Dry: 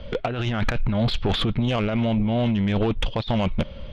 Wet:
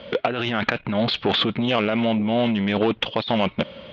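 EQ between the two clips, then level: band-pass 220–4500 Hz; distance through air 110 m; treble shelf 2.4 kHz +7.5 dB; +4.0 dB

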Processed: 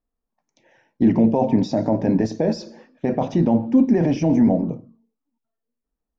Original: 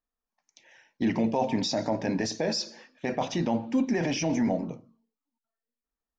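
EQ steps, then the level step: tilt shelf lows +10 dB, about 1.1 kHz; +1.5 dB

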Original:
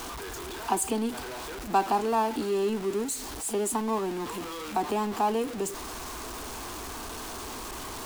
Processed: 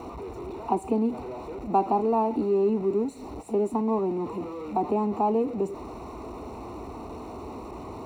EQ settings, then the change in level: boxcar filter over 27 samples; high-pass 64 Hz; +5.0 dB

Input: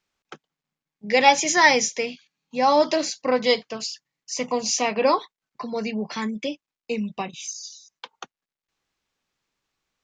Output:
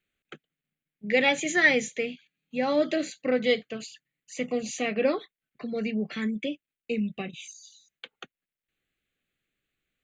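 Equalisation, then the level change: dynamic bell 2.6 kHz, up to -4 dB, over -38 dBFS, Q 2; static phaser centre 2.3 kHz, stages 4; 0.0 dB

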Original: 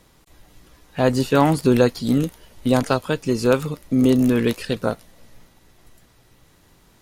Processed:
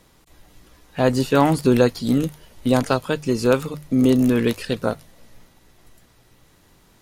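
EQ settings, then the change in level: hum notches 50/100/150 Hz; 0.0 dB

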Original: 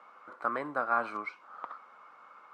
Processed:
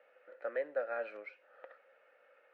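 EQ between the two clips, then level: vowel filter e; peaking EQ 110 Hz -12 dB 0.27 oct; bass shelf 360 Hz -5 dB; +7.5 dB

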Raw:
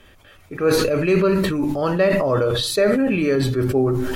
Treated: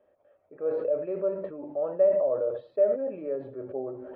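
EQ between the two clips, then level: band-pass filter 580 Hz, Q 5.5; distance through air 440 m; -1.0 dB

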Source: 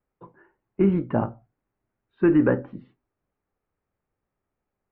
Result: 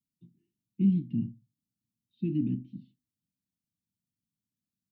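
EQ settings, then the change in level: high-pass 160 Hz 12 dB/octave; inverse Chebyshev band-stop 480–1700 Hz, stop band 50 dB; 0.0 dB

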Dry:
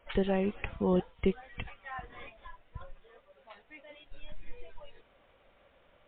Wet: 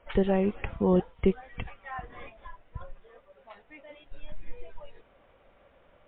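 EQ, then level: low-pass 1.8 kHz 6 dB/octave; +4.5 dB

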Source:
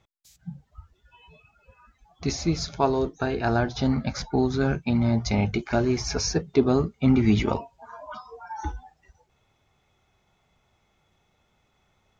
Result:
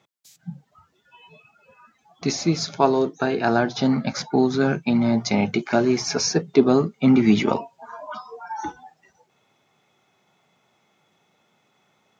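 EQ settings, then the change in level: high-pass 150 Hz 24 dB/octave; +4.5 dB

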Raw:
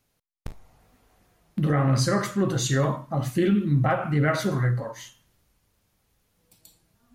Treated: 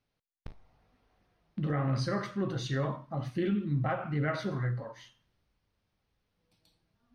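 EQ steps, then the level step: Savitzky-Golay filter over 15 samples; -8.5 dB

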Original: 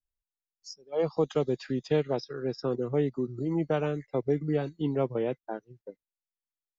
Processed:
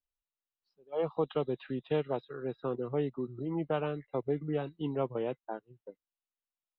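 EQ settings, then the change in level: rippled Chebyshev low-pass 4 kHz, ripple 6 dB; 0.0 dB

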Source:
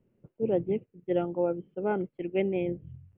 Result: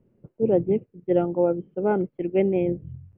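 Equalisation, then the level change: low-pass 1.2 kHz 6 dB/octave; +7.0 dB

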